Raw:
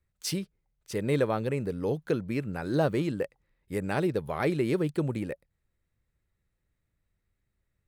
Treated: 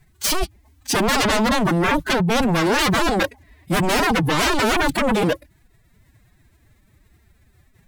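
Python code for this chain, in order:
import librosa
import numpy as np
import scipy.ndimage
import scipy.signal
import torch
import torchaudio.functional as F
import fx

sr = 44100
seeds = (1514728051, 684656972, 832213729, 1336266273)

y = fx.fold_sine(x, sr, drive_db=19, ceiling_db=-14.0)
y = fx.pitch_keep_formants(y, sr, semitones=11.5)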